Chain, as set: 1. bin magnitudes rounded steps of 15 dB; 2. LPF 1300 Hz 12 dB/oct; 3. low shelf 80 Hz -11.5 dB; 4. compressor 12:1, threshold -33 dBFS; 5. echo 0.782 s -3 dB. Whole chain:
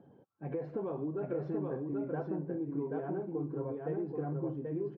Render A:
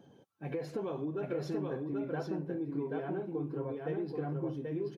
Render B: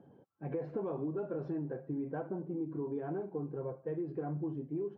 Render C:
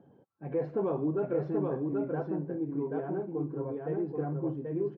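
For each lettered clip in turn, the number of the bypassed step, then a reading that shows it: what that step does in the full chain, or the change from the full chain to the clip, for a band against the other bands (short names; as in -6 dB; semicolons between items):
2, 2 kHz band +5.5 dB; 5, loudness change -1.5 LU; 4, mean gain reduction 2.5 dB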